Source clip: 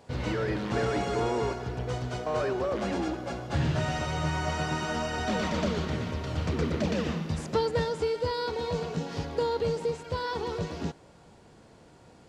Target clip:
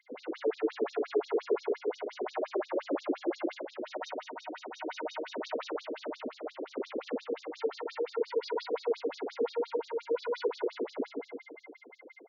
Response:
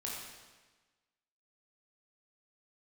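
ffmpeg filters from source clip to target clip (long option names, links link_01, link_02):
-filter_complex "[0:a]aecho=1:1:152|304|456|608|760|912|1064:0.562|0.304|0.164|0.0885|0.0478|0.0258|0.0139,asplit=2[link_01][link_02];[link_02]acrusher=bits=3:mix=0:aa=0.5,volume=-6dB[link_03];[link_01][link_03]amix=inputs=2:normalize=0,aeval=exprs='val(0)+0.00178*sin(2*PI*2100*n/s)':channel_layout=same,dynaudnorm=framelen=430:gausssize=13:maxgain=5dB,aeval=exprs='(tanh(15.8*val(0)+0.55)-tanh(0.55))/15.8':channel_layout=same,bass=frequency=250:gain=11,treble=frequency=4000:gain=-6[link_04];[1:a]atrim=start_sample=2205,atrim=end_sample=4410,asetrate=26019,aresample=44100[link_05];[link_04][link_05]afir=irnorm=-1:irlink=0,alimiter=limit=-18dB:level=0:latency=1:release=12,lowshelf=frequency=330:gain=8.5,afftfilt=real='re*between(b*sr/1024,360*pow(5200/360,0.5+0.5*sin(2*PI*5.7*pts/sr))/1.41,360*pow(5200/360,0.5+0.5*sin(2*PI*5.7*pts/sr))*1.41)':imag='im*between(b*sr/1024,360*pow(5200/360,0.5+0.5*sin(2*PI*5.7*pts/sr))/1.41,360*pow(5200/360,0.5+0.5*sin(2*PI*5.7*pts/sr))*1.41)':win_size=1024:overlap=0.75"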